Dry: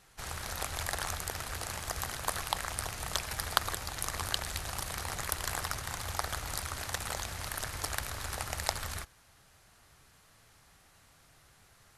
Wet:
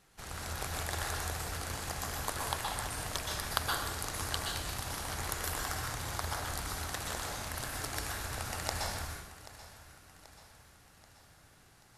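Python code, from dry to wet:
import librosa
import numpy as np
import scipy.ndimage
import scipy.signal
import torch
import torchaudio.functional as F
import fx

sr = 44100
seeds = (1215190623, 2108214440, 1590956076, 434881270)

p1 = fx.peak_eq(x, sr, hz=260.0, db=5.5, octaves=1.7)
p2 = p1 + fx.echo_feedback(p1, sr, ms=783, feedback_pct=53, wet_db=-16.5, dry=0)
p3 = fx.rev_plate(p2, sr, seeds[0], rt60_s=0.81, hf_ratio=0.9, predelay_ms=110, drr_db=-1.0)
y = F.gain(torch.from_numpy(p3), -5.0).numpy()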